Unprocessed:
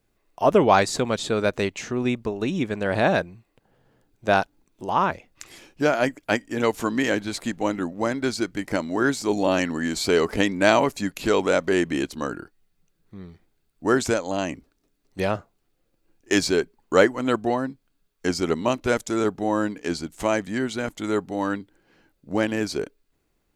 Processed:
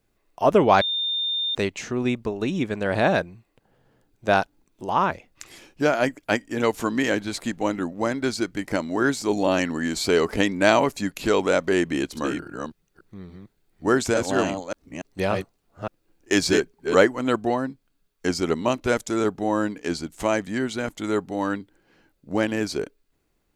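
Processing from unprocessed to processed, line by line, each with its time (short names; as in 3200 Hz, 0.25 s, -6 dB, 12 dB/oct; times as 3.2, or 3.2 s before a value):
0.81–1.55 bleep 3620 Hz -22.5 dBFS
11.86–16.95 reverse delay 0.287 s, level -4 dB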